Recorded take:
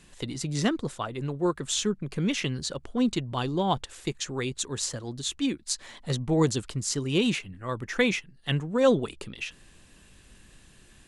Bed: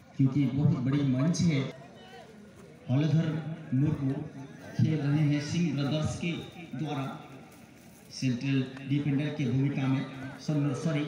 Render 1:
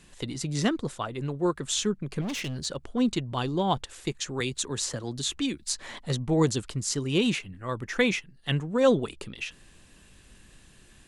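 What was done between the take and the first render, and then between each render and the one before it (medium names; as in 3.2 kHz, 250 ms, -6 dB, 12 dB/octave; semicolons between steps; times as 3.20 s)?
2.21–2.65 s: overload inside the chain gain 29.5 dB; 4.40–5.99 s: three bands compressed up and down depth 70%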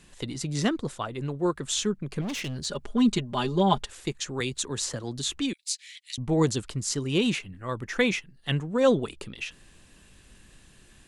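2.68–3.90 s: comb 4.9 ms, depth 94%; 5.53–6.18 s: elliptic high-pass 2.2 kHz, stop band 80 dB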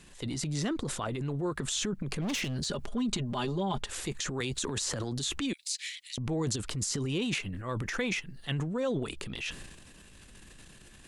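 transient shaper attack -5 dB, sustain +10 dB; compression 5:1, threshold -29 dBFS, peak gain reduction 12 dB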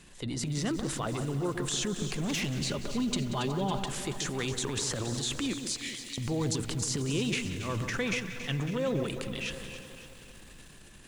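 echo whose repeats swap between lows and highs 139 ms, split 1.6 kHz, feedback 68%, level -7.5 dB; bit-crushed delay 184 ms, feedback 80%, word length 8-bit, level -14.5 dB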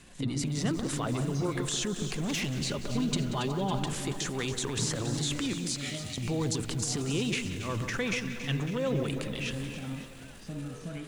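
add bed -10 dB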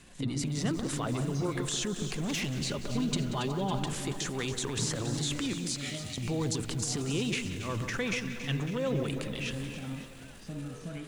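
trim -1 dB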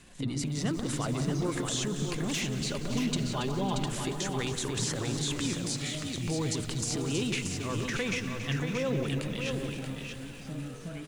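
delay 630 ms -6 dB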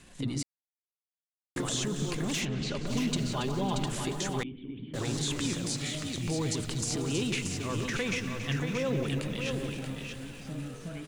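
0.43–1.56 s: mute; 2.44–2.85 s: low-pass 2.9 kHz -> 7 kHz; 4.43–4.94 s: cascade formant filter i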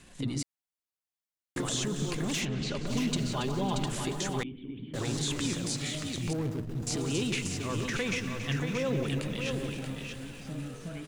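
6.33–6.87 s: median filter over 41 samples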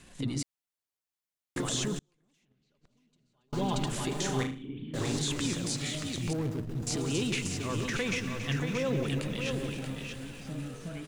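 1.98–3.53 s: inverted gate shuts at -25 dBFS, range -41 dB; 4.08–5.19 s: flutter echo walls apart 6.5 m, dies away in 0.36 s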